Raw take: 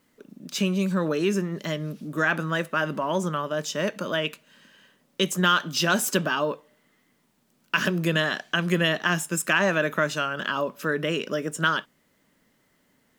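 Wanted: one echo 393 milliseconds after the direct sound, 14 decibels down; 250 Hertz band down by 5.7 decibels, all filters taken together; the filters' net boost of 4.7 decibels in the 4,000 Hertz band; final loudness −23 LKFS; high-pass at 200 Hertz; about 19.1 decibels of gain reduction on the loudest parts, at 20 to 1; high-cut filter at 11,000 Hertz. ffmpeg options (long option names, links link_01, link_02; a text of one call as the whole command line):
ffmpeg -i in.wav -af "highpass=200,lowpass=11000,equalizer=frequency=250:width_type=o:gain=-5.5,equalizer=frequency=4000:width_type=o:gain=7,acompressor=threshold=-35dB:ratio=20,aecho=1:1:393:0.2,volume=16.5dB" out.wav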